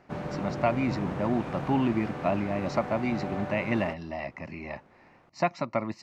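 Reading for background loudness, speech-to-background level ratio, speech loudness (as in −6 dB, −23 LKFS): −36.0 LKFS, 5.5 dB, −30.5 LKFS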